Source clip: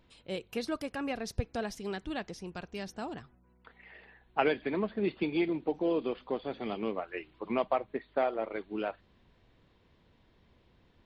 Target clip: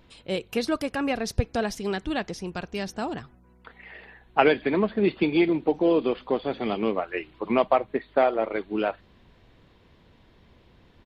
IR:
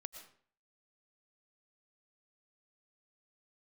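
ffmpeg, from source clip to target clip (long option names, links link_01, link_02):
-af "aresample=32000,aresample=44100,volume=8.5dB"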